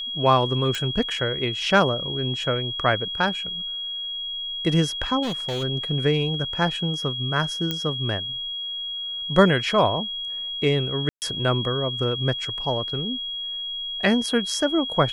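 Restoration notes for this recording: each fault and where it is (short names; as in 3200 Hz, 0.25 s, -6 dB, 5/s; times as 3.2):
tone 3300 Hz -28 dBFS
0.75 pop
5.22–5.64 clipped -23.5 dBFS
7.71 pop -11 dBFS
11.09–11.22 gap 0.129 s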